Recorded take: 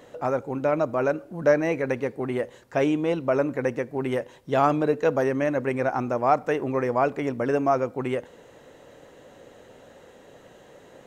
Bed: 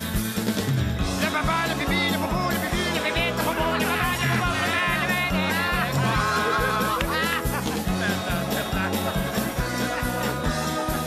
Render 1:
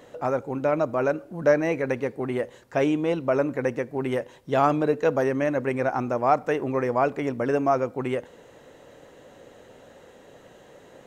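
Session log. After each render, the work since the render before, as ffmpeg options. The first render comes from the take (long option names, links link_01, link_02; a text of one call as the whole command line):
ffmpeg -i in.wav -af anull out.wav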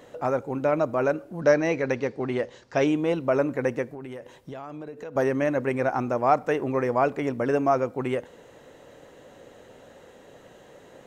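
ffmpeg -i in.wav -filter_complex "[0:a]asettb=1/sr,asplit=3[link_01][link_02][link_03];[link_01]atrim=end=1.414[link_04];[link_02]atrim=start=1.41:end=2.87,asetpts=PTS-STARTPTS,afade=type=in:duration=0.004:curve=qsin,afade=type=out:start_time=1.456:duration=0.004:curve=qsin,lowpass=frequency=5300:width_type=q:width=2.1[link_05];[link_03]atrim=start=2.866[link_06];[link_04][link_05]acrossfade=duration=0.004:curve1=hsin:curve2=qsin[link_07];[link_07][link_06]acrossfade=duration=0.004:curve1=qsin:curve2=hsin,asettb=1/sr,asplit=3[link_08][link_09][link_10];[link_08]atrim=end=3.874[link_11];[link_09]atrim=start=3.87:end=5.16,asetpts=PTS-STARTPTS,afade=type=in:duration=0.004:curve=qsin,afade=type=out:start_time=1.286:duration=0.004:curve=qsin,acompressor=threshold=-34dB:ratio=12:attack=3.2:release=140:knee=1:detection=peak[link_12];[link_10]atrim=start=5.156[link_13];[link_11][link_12]acrossfade=duration=0.004:curve1=hsin:curve2=qsin[link_14];[link_14][link_13]acrossfade=duration=0.004:curve1=qsin:curve2=hsin" out.wav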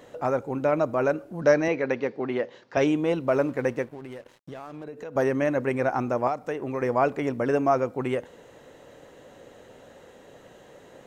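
ffmpeg -i in.wav -filter_complex "[0:a]asettb=1/sr,asplit=3[link_01][link_02][link_03];[link_01]atrim=end=1.684[link_04];[link_02]atrim=start=1.68:end=2.77,asetpts=PTS-STARTPTS,afade=type=in:duration=0.004:curve=qsin,afade=type=out:start_time=1.086:duration=0.004:curve=qsin,highpass=170,lowpass=4200[link_05];[link_03]atrim=start=2.766[link_06];[link_04][link_05]acrossfade=duration=0.004:curve1=hsin:curve2=qsin[link_07];[link_07][link_06]acrossfade=duration=0.004:curve1=qsin:curve2=hsin,asettb=1/sr,asplit=3[link_08][link_09][link_10];[link_08]atrim=end=3.274[link_11];[link_09]atrim=start=3.27:end=4.84,asetpts=PTS-STARTPTS,afade=type=in:duration=0.004:curve=qsin,afade=type=out:start_time=1.566:duration=0.004:curve=qsin,aeval=exprs='sgn(val(0))*max(abs(val(0))-0.00299,0)':channel_layout=same[link_12];[link_10]atrim=start=4.836[link_13];[link_11][link_12]acrossfade=duration=0.004:curve1=hsin:curve2=qsin[link_14];[link_14][link_13]acrossfade=duration=0.004:curve1=qsin:curve2=hsin,asettb=1/sr,asplit=3[link_15][link_16][link_17];[link_15]atrim=end=6.274[link_18];[link_16]atrim=start=6.27:end=6.82,asetpts=PTS-STARTPTS,afade=type=in:duration=0.004:curve=qsin,afade=type=out:start_time=0.546:duration=0.004:curve=qsin,acrossover=split=1100|2700[link_19][link_20][link_21];[link_19]acompressor=threshold=-28dB:ratio=4[link_22];[link_20]acompressor=threshold=-41dB:ratio=4[link_23];[link_21]acompressor=threshold=-50dB:ratio=4[link_24];[link_22][link_23][link_24]amix=inputs=3:normalize=0[link_25];[link_17]atrim=start=6.816[link_26];[link_18][link_25]acrossfade=duration=0.004:curve1=hsin:curve2=qsin[link_27];[link_27][link_26]acrossfade=duration=0.004:curve1=qsin:curve2=hsin" out.wav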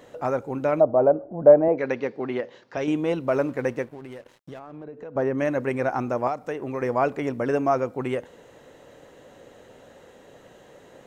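ffmpeg -i in.wav -filter_complex "[0:a]asplit=3[link_01][link_02][link_03];[link_01]afade=type=out:start_time=0.79:duration=0.02[link_04];[link_02]lowpass=frequency=700:width_type=q:width=2.6,afade=type=in:start_time=0.79:duration=0.02,afade=type=out:start_time=1.77:duration=0.02[link_05];[link_03]afade=type=in:start_time=1.77:duration=0.02[link_06];[link_04][link_05][link_06]amix=inputs=3:normalize=0,asettb=1/sr,asplit=3[link_07][link_08][link_09];[link_07]atrim=end=2.404[link_10];[link_08]atrim=start=2.4:end=2.88,asetpts=PTS-STARTPTS,afade=type=in:duration=0.004:curve=qsin,afade=type=out:start_time=0.476:duration=0.004:curve=qsin,acompressor=threshold=-28dB:ratio=2:attack=3.2:release=140:knee=1:detection=peak[link_11];[link_09]atrim=start=2.876[link_12];[link_10][link_11]acrossfade=duration=0.004:curve1=hsin:curve2=qsin[link_13];[link_13][link_12]acrossfade=duration=0.004:curve1=qsin:curve2=hsin,asplit=3[link_14][link_15][link_16];[link_14]afade=type=out:start_time=4.58:duration=0.02[link_17];[link_15]lowpass=frequency=1200:poles=1,afade=type=in:start_time=4.58:duration=0.02,afade=type=out:start_time=5.37:duration=0.02[link_18];[link_16]afade=type=in:start_time=5.37:duration=0.02[link_19];[link_17][link_18][link_19]amix=inputs=3:normalize=0" out.wav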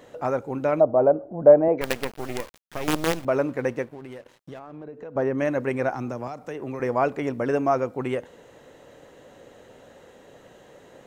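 ffmpeg -i in.wav -filter_complex "[0:a]asettb=1/sr,asplit=3[link_01][link_02][link_03];[link_01]atrim=end=1.814[link_04];[link_02]atrim=start=1.81:end=3.25,asetpts=PTS-STARTPTS,afade=type=in:duration=0.004:curve=qsin,afade=type=out:start_time=1.436:duration=0.004:curve=qsin,acrusher=bits=4:dc=4:mix=0:aa=0.000001[link_05];[link_03]atrim=start=3.246[link_06];[link_04][link_05]acrossfade=duration=0.004:curve1=hsin:curve2=qsin[link_07];[link_07][link_06]acrossfade=duration=0.004:curve1=qsin:curve2=hsin,asettb=1/sr,asplit=3[link_08][link_09][link_10];[link_08]atrim=end=5.934[link_11];[link_09]atrim=start=5.93:end=6.8,asetpts=PTS-STARTPTS,afade=type=in:duration=0.004:curve=qsin,afade=type=out:start_time=0.866:duration=0.004:curve=qsin,acrossover=split=240|3000[link_12][link_13][link_14];[link_13]acompressor=threshold=-30dB:ratio=6:attack=3.2:release=140:knee=2.83:detection=peak[link_15];[link_12][link_15][link_14]amix=inputs=3:normalize=0[link_16];[link_10]atrim=start=6.796[link_17];[link_11][link_16]acrossfade=duration=0.004:curve1=hsin:curve2=qsin[link_18];[link_18][link_17]acrossfade=duration=0.004:curve1=qsin:curve2=hsin" out.wav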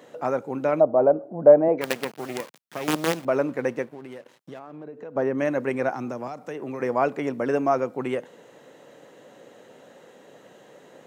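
ffmpeg -i in.wav -af "highpass=frequency=140:width=0.5412,highpass=frequency=140:width=1.3066" out.wav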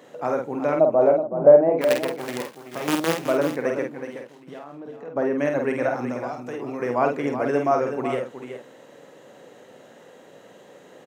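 ffmpeg -i in.wav -filter_complex "[0:a]asplit=2[link_01][link_02];[link_02]adelay=49,volume=-4.5dB[link_03];[link_01][link_03]amix=inputs=2:normalize=0,asplit=2[link_04][link_05];[link_05]aecho=0:1:374:0.335[link_06];[link_04][link_06]amix=inputs=2:normalize=0" out.wav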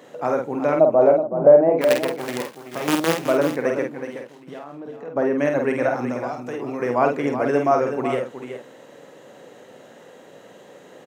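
ffmpeg -i in.wav -af "volume=2.5dB,alimiter=limit=-3dB:level=0:latency=1" out.wav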